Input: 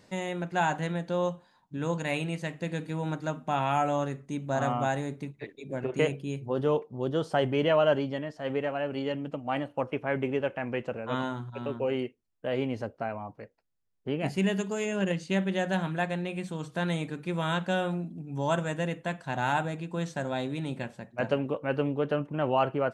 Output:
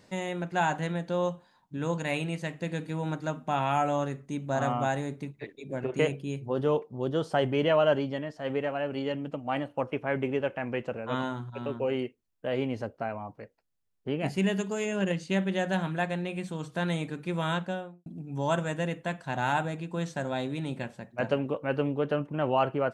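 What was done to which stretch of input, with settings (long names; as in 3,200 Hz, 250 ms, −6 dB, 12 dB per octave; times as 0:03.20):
0:17.47–0:18.06: fade out and dull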